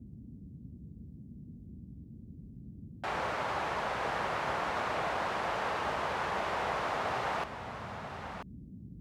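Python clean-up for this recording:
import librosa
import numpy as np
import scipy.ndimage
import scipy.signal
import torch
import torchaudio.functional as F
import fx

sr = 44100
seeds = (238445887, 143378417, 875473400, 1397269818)

y = fx.noise_reduce(x, sr, print_start_s=2.04, print_end_s=2.54, reduce_db=30.0)
y = fx.fix_echo_inverse(y, sr, delay_ms=989, level_db=-9.0)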